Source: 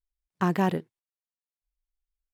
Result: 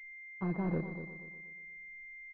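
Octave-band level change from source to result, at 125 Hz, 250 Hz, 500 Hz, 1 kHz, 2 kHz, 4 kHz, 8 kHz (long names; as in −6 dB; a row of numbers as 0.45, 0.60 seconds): −6.5 dB, −7.5 dB, −9.0 dB, −16.0 dB, −2.5 dB, below −25 dB, below −25 dB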